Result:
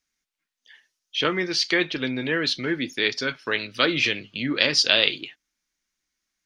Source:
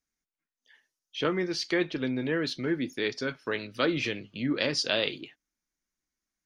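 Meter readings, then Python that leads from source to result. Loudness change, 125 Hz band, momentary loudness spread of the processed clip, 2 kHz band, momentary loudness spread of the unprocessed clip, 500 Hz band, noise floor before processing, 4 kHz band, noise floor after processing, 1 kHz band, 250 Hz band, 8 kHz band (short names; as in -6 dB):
+7.0 dB, +1.5 dB, 10 LU, +9.0 dB, 7 LU, +2.5 dB, under -85 dBFS, +10.5 dB, -84 dBFS, +6.0 dB, +2.0 dB, +8.0 dB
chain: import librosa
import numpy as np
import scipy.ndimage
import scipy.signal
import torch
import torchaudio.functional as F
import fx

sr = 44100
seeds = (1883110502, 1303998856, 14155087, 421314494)

y = fx.peak_eq(x, sr, hz=3300.0, db=9.5, octaves=2.7)
y = y * 10.0 ** (1.5 / 20.0)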